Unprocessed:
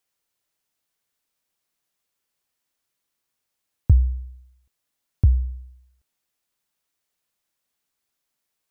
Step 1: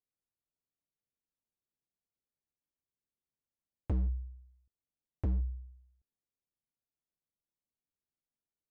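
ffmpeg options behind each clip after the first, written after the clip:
-af "adynamicsmooth=sensitivity=7.5:basefreq=510,asoftclip=type=hard:threshold=-21dB,volume=-7dB"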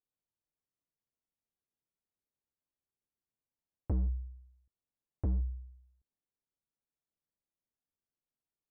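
-af "lowpass=1.2k"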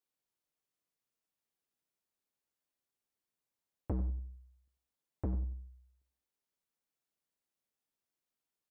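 -filter_complex "[0:a]lowshelf=f=150:g=-9.5,asplit=2[a][b];[b]adelay=93,lowpass=f=1.1k:p=1,volume=-11.5dB,asplit=2[c][d];[d]adelay=93,lowpass=f=1.1k:p=1,volume=0.33,asplit=2[e][f];[f]adelay=93,lowpass=f=1.1k:p=1,volume=0.33[g];[c][e][g]amix=inputs=3:normalize=0[h];[a][h]amix=inputs=2:normalize=0,volume=3dB"

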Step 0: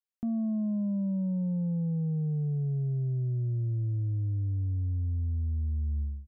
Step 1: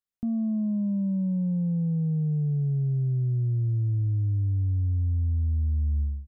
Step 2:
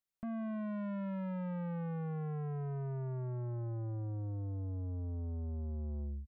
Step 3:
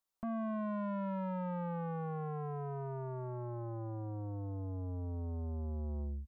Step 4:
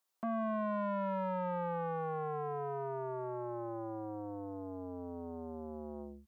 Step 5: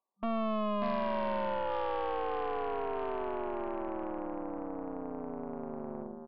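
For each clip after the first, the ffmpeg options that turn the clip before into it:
-af "lowshelf=f=350:g=9,volume=-3.5dB"
-af "aecho=1:1:5.2:0.33,asoftclip=type=tanh:threshold=-35dB,volume=-2.5dB"
-af "equalizer=f=125:t=o:w=1:g=-7,equalizer=f=1k:t=o:w=1:g=7,equalizer=f=2k:t=o:w=1:g=-5,volume=2.5dB"
-af "highpass=280,volume=5.5dB"
-filter_complex "[0:a]afftfilt=real='re*between(b*sr/4096,200,1200)':imag='im*between(b*sr/4096,200,1200)':win_size=4096:overlap=0.75,asplit=2[a][b];[b]aecho=0:1:590:0.562[c];[a][c]amix=inputs=2:normalize=0,aeval=exprs='0.0531*(cos(1*acos(clip(val(0)/0.0531,-1,1)))-cos(1*PI/2))+0.00668*(cos(6*acos(clip(val(0)/0.0531,-1,1)))-cos(6*PI/2))':c=same,volume=2.5dB"

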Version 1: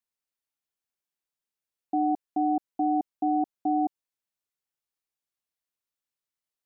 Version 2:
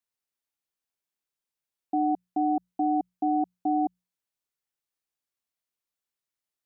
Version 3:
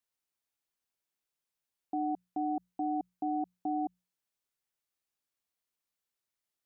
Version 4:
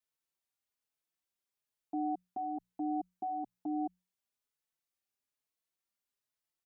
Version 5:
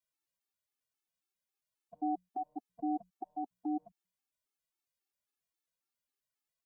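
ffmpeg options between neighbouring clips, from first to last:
-af "bandreject=f=60:t=h:w=6,bandreject=f=120:t=h:w=6,bandreject=f=180:t=h:w=6"
-af "alimiter=level_in=2dB:limit=-24dB:level=0:latency=1:release=28,volume=-2dB"
-filter_complex "[0:a]asplit=2[a][b];[b]adelay=4.2,afreqshift=1.1[c];[a][c]amix=inputs=2:normalize=1"
-af "afftfilt=real='re*gt(sin(2*PI*3.7*pts/sr)*(1-2*mod(floor(b*sr/1024/230),2)),0)':imag='im*gt(sin(2*PI*3.7*pts/sr)*(1-2*mod(floor(b*sr/1024/230),2)),0)':win_size=1024:overlap=0.75,volume=1.5dB"

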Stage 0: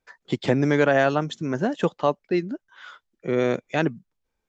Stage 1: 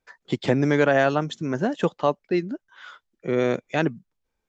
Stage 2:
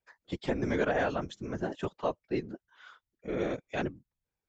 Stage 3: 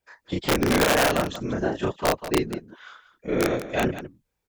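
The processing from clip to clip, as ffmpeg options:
-af anull
-af "afftfilt=real='hypot(re,im)*cos(2*PI*random(0))':imag='hypot(re,im)*sin(2*PI*random(1))':win_size=512:overlap=0.75,volume=-4dB"
-af "aeval=exprs='(mod(11.2*val(0)+1,2)-1)/11.2':c=same,aecho=1:1:32.07|189.5:0.891|0.282,volume=6.5dB"

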